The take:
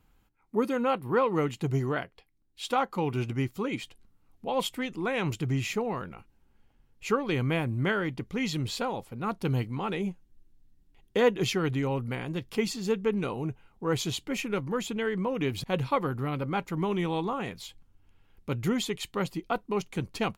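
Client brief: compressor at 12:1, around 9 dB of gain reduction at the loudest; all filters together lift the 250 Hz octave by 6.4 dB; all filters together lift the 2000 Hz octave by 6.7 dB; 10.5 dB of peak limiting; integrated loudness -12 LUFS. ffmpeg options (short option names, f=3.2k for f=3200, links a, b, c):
-af "equalizer=f=250:t=o:g=8,equalizer=f=2k:t=o:g=8.5,acompressor=threshold=-23dB:ratio=12,volume=20.5dB,alimiter=limit=-2.5dB:level=0:latency=1"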